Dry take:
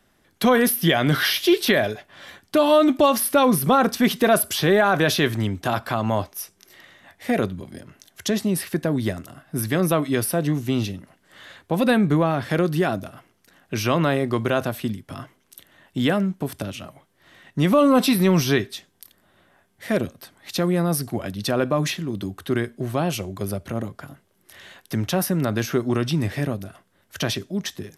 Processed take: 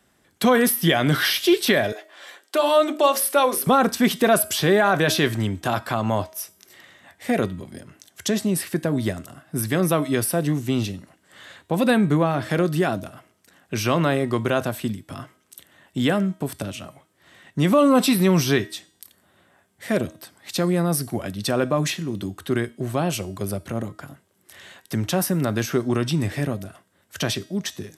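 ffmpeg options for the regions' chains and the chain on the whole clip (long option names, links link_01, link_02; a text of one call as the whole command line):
ffmpeg -i in.wav -filter_complex "[0:a]asettb=1/sr,asplit=3[link_01][link_02][link_03];[link_01]atrim=end=1.924[link_04];[link_02]atrim=start=1.92:end=3.67,asetpts=PTS-STARTPTS,afade=type=in:duration=0.004:curve=qsin,afade=type=out:start_time=1.746:duration=0.004:curve=qsin,highpass=frequency=350:width=0.5412,highpass=frequency=350:width=1.3066,bandreject=frequency=60:width_type=h:width=6,bandreject=frequency=120:width_type=h:width=6,bandreject=frequency=180:width_type=h:width=6,bandreject=frequency=240:width_type=h:width=6,bandreject=frequency=300:width_type=h:width=6,bandreject=frequency=360:width_type=h:width=6,bandreject=frequency=420:width_type=h:width=6,bandreject=frequency=480:width_type=h:width=6,bandreject=frequency=540:width_type=h:width=6,bandreject=frequency=600:width_type=h:width=6[link_05];[link_03]atrim=start=3.666[link_06];[link_04][link_05]acrossfade=duration=0.004:curve1=hsin:curve2=qsin[link_07];[link_07][link_06]acrossfade=duration=0.004:curve1=qsin:curve2=hsin,highpass=51,equalizer=frequency=7900:width_type=o:width=0.35:gain=6.5,bandreject=frequency=317:width_type=h:width=4,bandreject=frequency=634:width_type=h:width=4,bandreject=frequency=951:width_type=h:width=4,bandreject=frequency=1268:width_type=h:width=4,bandreject=frequency=1585:width_type=h:width=4,bandreject=frequency=1902:width_type=h:width=4,bandreject=frequency=2219:width_type=h:width=4,bandreject=frequency=2536:width_type=h:width=4,bandreject=frequency=2853:width_type=h:width=4,bandreject=frequency=3170:width_type=h:width=4,bandreject=frequency=3487:width_type=h:width=4,bandreject=frequency=3804:width_type=h:width=4,bandreject=frequency=4121:width_type=h:width=4,bandreject=frequency=4438:width_type=h:width=4,bandreject=frequency=4755:width_type=h:width=4,bandreject=frequency=5072:width_type=h:width=4,bandreject=frequency=5389:width_type=h:width=4,bandreject=frequency=5706:width_type=h:width=4,bandreject=frequency=6023:width_type=h:width=4,bandreject=frequency=6340:width_type=h:width=4,bandreject=frequency=6657:width_type=h:width=4,bandreject=frequency=6974:width_type=h:width=4,bandreject=frequency=7291:width_type=h:width=4,bandreject=frequency=7608:width_type=h:width=4,bandreject=frequency=7925:width_type=h:width=4,bandreject=frequency=8242:width_type=h:width=4,bandreject=frequency=8559:width_type=h:width=4,bandreject=frequency=8876:width_type=h:width=4,bandreject=frequency=9193:width_type=h:width=4,bandreject=frequency=9510:width_type=h:width=4,bandreject=frequency=9827:width_type=h:width=4,bandreject=frequency=10144:width_type=h:width=4,bandreject=frequency=10461:width_type=h:width=4,bandreject=frequency=10778:width_type=h:width=4,bandreject=frequency=11095:width_type=h:width=4,bandreject=frequency=11412:width_type=h:width=4,bandreject=frequency=11729:width_type=h:width=4,bandreject=frequency=12046:width_type=h:width=4,bandreject=frequency=12363:width_type=h:width=4" out.wav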